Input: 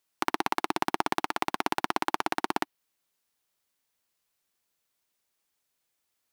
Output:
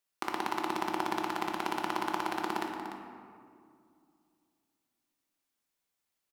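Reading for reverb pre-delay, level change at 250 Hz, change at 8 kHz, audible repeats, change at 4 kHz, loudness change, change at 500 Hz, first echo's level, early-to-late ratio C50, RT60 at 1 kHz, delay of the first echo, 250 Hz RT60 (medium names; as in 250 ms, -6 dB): 5 ms, -1.5 dB, -5.5 dB, 1, -5.0 dB, -4.0 dB, -3.0 dB, -10.5 dB, 3.0 dB, 2.2 s, 294 ms, 2.8 s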